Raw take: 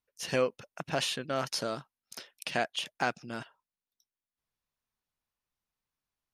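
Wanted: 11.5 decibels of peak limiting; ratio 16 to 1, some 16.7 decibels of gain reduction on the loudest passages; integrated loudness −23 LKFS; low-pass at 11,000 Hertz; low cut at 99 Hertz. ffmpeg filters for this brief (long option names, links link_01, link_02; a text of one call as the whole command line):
ffmpeg -i in.wav -af "highpass=99,lowpass=11000,acompressor=threshold=-40dB:ratio=16,volume=24.5dB,alimiter=limit=-7.5dB:level=0:latency=1" out.wav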